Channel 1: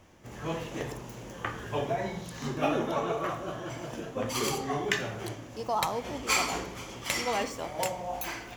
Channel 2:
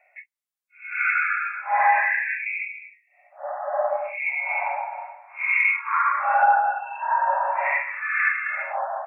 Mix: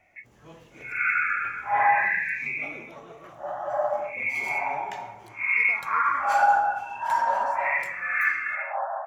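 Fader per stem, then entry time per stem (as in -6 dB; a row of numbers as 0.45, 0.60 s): -14.5, -2.0 dB; 0.00, 0.00 s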